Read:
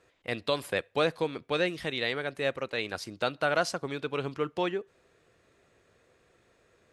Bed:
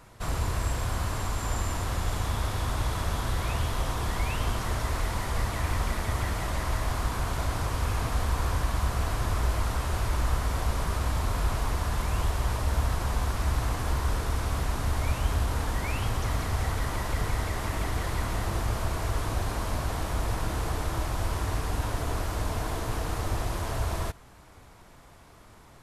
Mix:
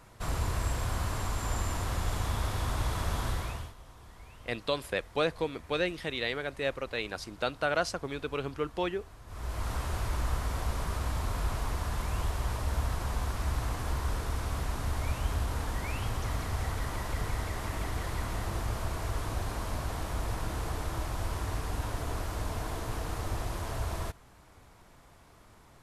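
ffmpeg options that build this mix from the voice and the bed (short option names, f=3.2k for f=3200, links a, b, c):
-filter_complex "[0:a]adelay=4200,volume=-2dB[a];[1:a]volume=15.5dB,afade=t=out:st=3.27:d=0.47:silence=0.1,afade=t=in:st=9.26:d=0.47:silence=0.125893[b];[a][b]amix=inputs=2:normalize=0"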